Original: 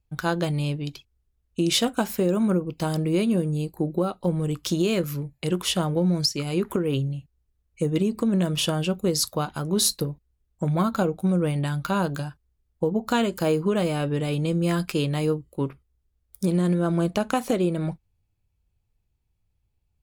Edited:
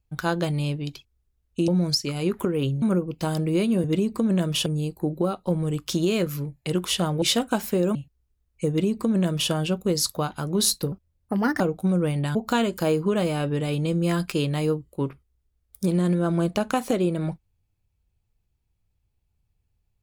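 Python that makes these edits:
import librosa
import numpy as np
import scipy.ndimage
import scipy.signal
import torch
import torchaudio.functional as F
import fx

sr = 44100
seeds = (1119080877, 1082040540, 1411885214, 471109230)

y = fx.edit(x, sr, fx.swap(start_s=1.68, length_s=0.73, other_s=5.99, other_length_s=1.14),
    fx.duplicate(start_s=7.87, length_s=0.82, to_s=3.43),
    fx.speed_span(start_s=10.1, length_s=0.9, speed=1.32),
    fx.cut(start_s=11.75, length_s=1.2), tone=tone)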